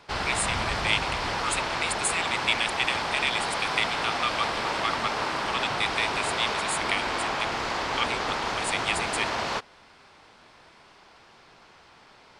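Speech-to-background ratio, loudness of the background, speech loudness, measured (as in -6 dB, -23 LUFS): -1.0 dB, -28.5 LUFS, -29.5 LUFS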